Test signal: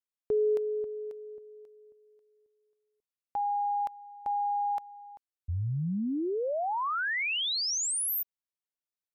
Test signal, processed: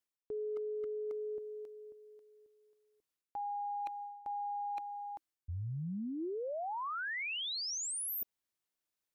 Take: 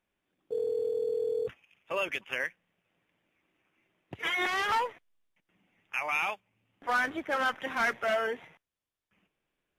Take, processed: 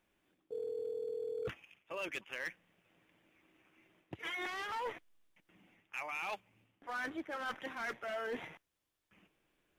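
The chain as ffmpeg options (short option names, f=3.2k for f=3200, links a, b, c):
-af "equalizer=f=320:t=o:w=0.24:g=5,areverse,acompressor=threshold=-42dB:ratio=12:attack=28:release=252:knee=1:detection=rms,areverse,asoftclip=type=hard:threshold=-38dB,volume=4.5dB"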